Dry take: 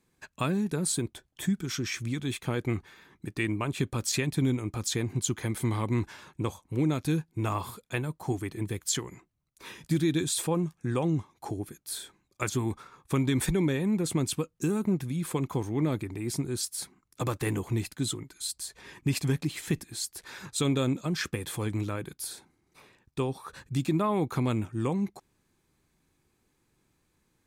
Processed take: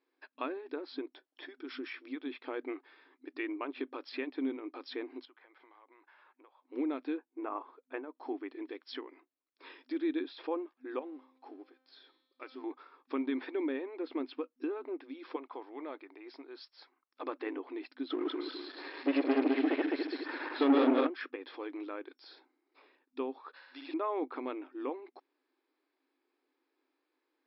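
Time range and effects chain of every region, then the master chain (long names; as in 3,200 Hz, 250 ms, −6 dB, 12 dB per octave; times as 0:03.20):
0:05.25–0:06.62: band-pass filter 730–2,200 Hz + downward compressor, threshold −52 dBFS
0:07.17–0:08.15: transient designer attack +1 dB, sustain −5 dB + low-pass filter 1,700 Hz
0:10.99–0:12.64: mu-law and A-law mismatch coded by mu + tuned comb filter 260 Hz, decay 1.1 s, mix 70%
0:15.36–0:17.23: high-pass filter 680 Hz + spectral tilt −2 dB per octave
0:18.10–0:21.07: feedback delay that plays each chunk backwards 104 ms, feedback 65%, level 0 dB + high-shelf EQ 4,300 Hz −11.5 dB + leveller curve on the samples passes 3
0:23.52–0:23.94: parametric band 310 Hz −14.5 dB 1.4 octaves + flutter between parallel walls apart 10 metres, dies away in 1.3 s
whole clip: brick-wall band-pass 250–5,500 Hz; treble cut that deepens with the level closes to 2,900 Hz, closed at −30.5 dBFS; high-shelf EQ 4,100 Hz −9.5 dB; level −5 dB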